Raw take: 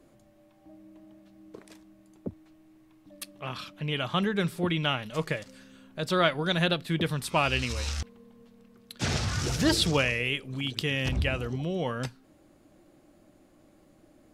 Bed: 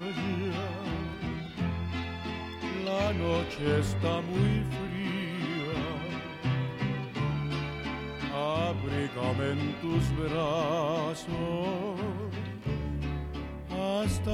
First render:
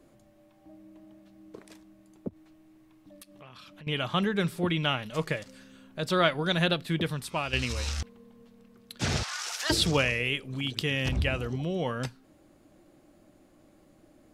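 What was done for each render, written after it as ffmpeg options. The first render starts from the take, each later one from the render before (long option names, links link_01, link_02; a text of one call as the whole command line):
ffmpeg -i in.wav -filter_complex "[0:a]asettb=1/sr,asplit=3[link_01][link_02][link_03];[link_01]atrim=end=2.284[link_04];[link_02]atrim=start=2.28:end=3.87,asetpts=PTS-STARTPTS,afade=type=in:duration=0.004:curve=qsin,afade=type=out:start_time=1.586:duration=0.004:curve=qsin,acompressor=threshold=-46dB:ratio=6:attack=3.2:release=140:knee=1:detection=peak[link_05];[link_03]atrim=start=3.866[link_06];[link_04][link_05]acrossfade=duration=0.004:curve1=hsin:curve2=qsin[link_07];[link_07][link_06]acrossfade=duration=0.004:curve1=qsin:curve2=hsin,asettb=1/sr,asplit=3[link_08][link_09][link_10];[link_08]atrim=end=9.234[link_11];[link_09]atrim=start=9.23:end=9.7,asetpts=PTS-STARTPTS,afade=type=in:duration=0.004:curve=qsin,afade=type=out:start_time=0.466:duration=0.004:curve=qsin,highpass=frequency=810:width=0.5412,highpass=frequency=810:width=1.3066[link_12];[link_10]atrim=start=9.696[link_13];[link_11][link_12]acrossfade=duration=0.004:curve1=hsin:curve2=qsin[link_14];[link_14][link_13]acrossfade=duration=0.004:curve1=qsin:curve2=hsin,asplit=2[link_15][link_16];[link_15]atrim=end=7.53,asetpts=PTS-STARTPTS,afade=type=out:start_time=6.89:duration=0.64:silence=0.354813[link_17];[link_16]atrim=start=7.53,asetpts=PTS-STARTPTS,afade=type=in:duration=0.004:curve=hsin:silence=0.354813[link_18];[link_17][link_18]concat=n=2:v=0:a=1" out.wav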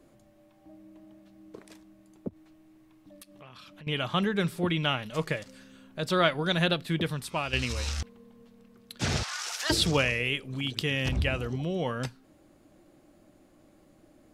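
ffmpeg -i in.wav -af anull out.wav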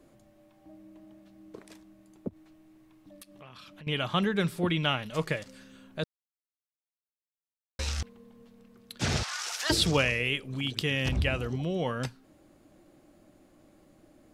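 ffmpeg -i in.wav -filter_complex "[0:a]asplit=3[link_01][link_02][link_03];[link_01]atrim=end=6.04,asetpts=PTS-STARTPTS,afade=type=out:start_time=6.036:duration=0.004:curve=hsin[link_04];[link_02]atrim=start=6.04:end=7.79,asetpts=PTS-STARTPTS,volume=0[link_05];[link_03]atrim=start=7.79,asetpts=PTS-STARTPTS,afade=type=in:duration=0.004:curve=hsin[link_06];[link_04][link_05][link_06]concat=n=3:v=0:a=1" out.wav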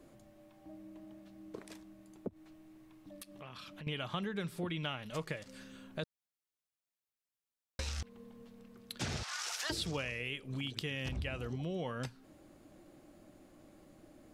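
ffmpeg -i in.wav -af "acompressor=threshold=-37dB:ratio=4" out.wav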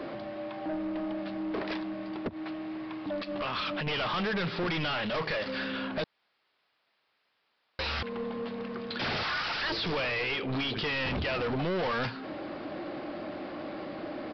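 ffmpeg -i in.wav -filter_complex "[0:a]asplit=2[link_01][link_02];[link_02]highpass=frequency=720:poles=1,volume=35dB,asoftclip=type=tanh:threshold=-16dB[link_03];[link_01][link_03]amix=inputs=2:normalize=0,lowpass=frequency=2000:poles=1,volume=-6dB,aresample=11025,asoftclip=type=tanh:threshold=-28dB,aresample=44100" out.wav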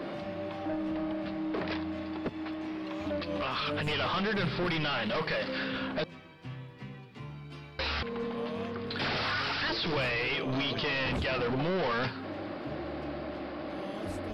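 ffmpeg -i in.wav -i bed.wav -filter_complex "[1:a]volume=-13dB[link_01];[0:a][link_01]amix=inputs=2:normalize=0" out.wav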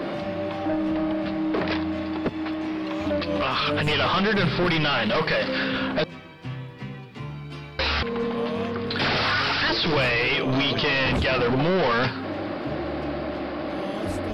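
ffmpeg -i in.wav -af "volume=8.5dB" out.wav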